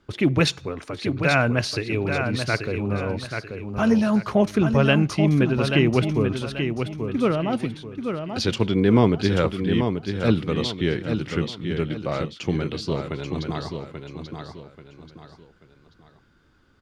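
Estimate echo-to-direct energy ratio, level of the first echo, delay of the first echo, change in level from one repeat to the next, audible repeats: −6.0 dB, −6.5 dB, 835 ms, −9.0 dB, 3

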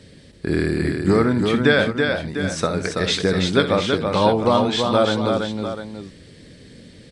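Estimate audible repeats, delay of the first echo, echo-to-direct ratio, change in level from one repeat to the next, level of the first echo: 3, 63 ms, −3.0 dB, repeats not evenly spaced, −13.0 dB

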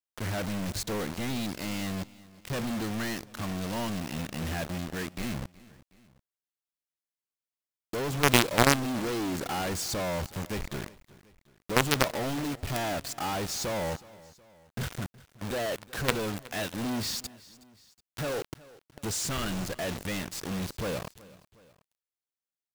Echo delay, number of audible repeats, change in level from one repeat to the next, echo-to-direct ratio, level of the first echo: 369 ms, 2, −5.5 dB, −20.0 dB, −21.0 dB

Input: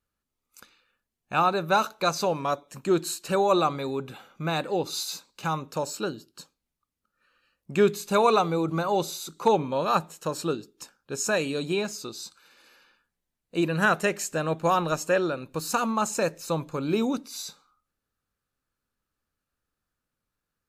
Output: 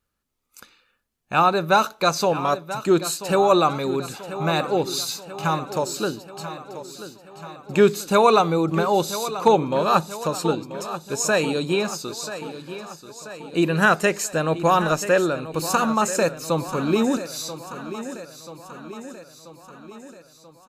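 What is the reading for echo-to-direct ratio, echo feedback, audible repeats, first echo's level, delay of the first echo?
−11.0 dB, 58%, 5, −13.0 dB, 985 ms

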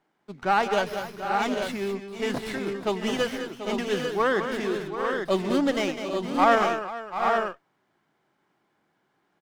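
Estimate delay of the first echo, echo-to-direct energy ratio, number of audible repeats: 142 ms, −2.0 dB, 6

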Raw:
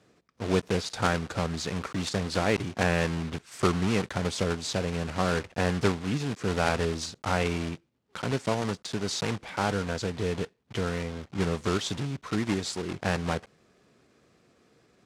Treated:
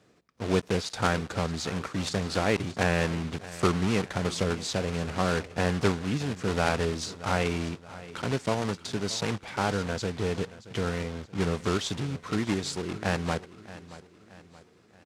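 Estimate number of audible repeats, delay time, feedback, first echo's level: 3, 626 ms, 45%, −17.0 dB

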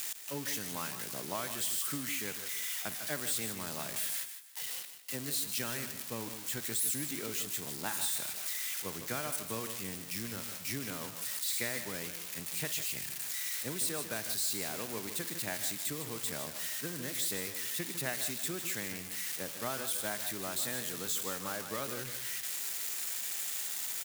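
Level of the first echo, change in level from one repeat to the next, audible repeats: −17.5 dB, repeats not evenly spaced, 3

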